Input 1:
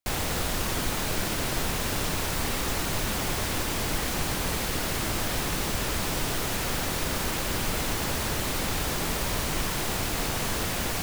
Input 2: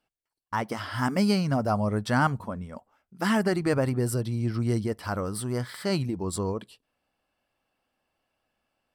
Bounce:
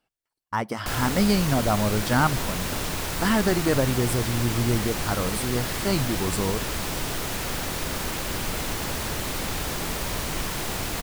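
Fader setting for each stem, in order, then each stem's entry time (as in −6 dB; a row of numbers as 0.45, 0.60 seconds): −0.5, +2.0 decibels; 0.80, 0.00 seconds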